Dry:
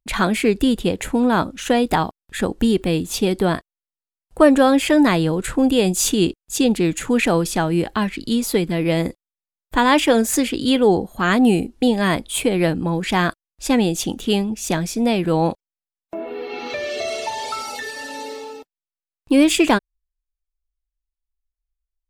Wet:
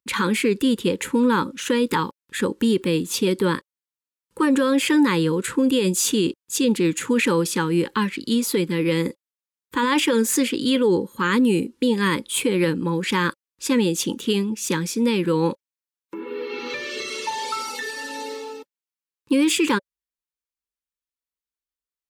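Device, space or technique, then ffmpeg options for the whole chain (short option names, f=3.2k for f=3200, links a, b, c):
PA system with an anti-feedback notch: -af "highpass=170,asuperstop=centerf=690:order=12:qfactor=2.4,alimiter=limit=-11.5dB:level=0:latency=1:release=11"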